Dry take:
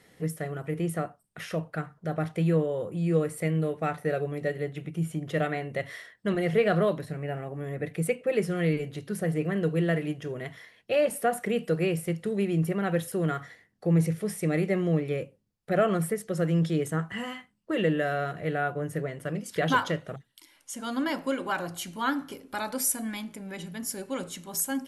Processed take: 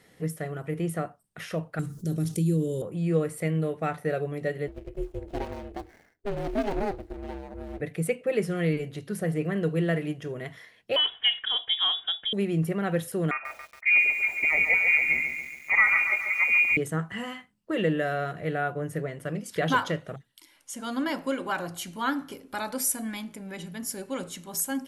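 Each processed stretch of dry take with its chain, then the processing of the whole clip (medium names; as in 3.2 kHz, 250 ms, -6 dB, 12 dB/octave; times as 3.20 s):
1.79–2.82 s: FFT filter 360 Hz 0 dB, 710 Hz -22 dB, 1.9 kHz -18 dB, 6.1 kHz +10 dB + level flattener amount 50%
4.68–7.81 s: median filter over 41 samples + ring modulator 200 Hz
10.96–12.33 s: comb 2.8 ms, depth 30% + frequency inversion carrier 3.6 kHz
13.31–16.77 s: peaking EQ 490 Hz +3 dB 2.5 oct + frequency inversion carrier 2.6 kHz + bit-crushed delay 140 ms, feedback 55%, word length 8-bit, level -6.5 dB
whole clip: none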